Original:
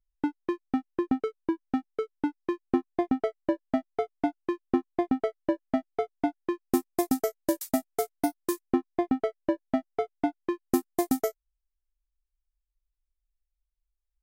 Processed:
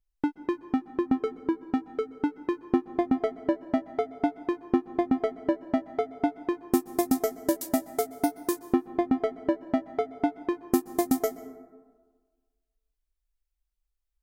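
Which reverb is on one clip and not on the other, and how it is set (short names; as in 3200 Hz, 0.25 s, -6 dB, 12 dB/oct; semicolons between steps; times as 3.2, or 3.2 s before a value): plate-style reverb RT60 1.5 s, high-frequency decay 0.35×, pre-delay 0.115 s, DRR 15.5 dB; gain +1 dB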